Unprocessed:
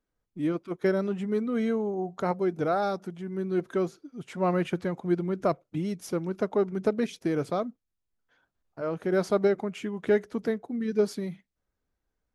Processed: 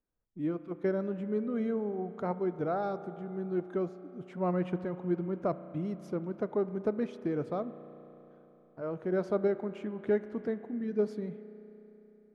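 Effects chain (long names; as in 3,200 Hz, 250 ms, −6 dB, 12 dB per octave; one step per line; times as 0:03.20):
low-pass filter 1,200 Hz 6 dB per octave
spring reverb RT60 3.7 s, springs 33 ms, chirp 40 ms, DRR 12.5 dB
level −4.5 dB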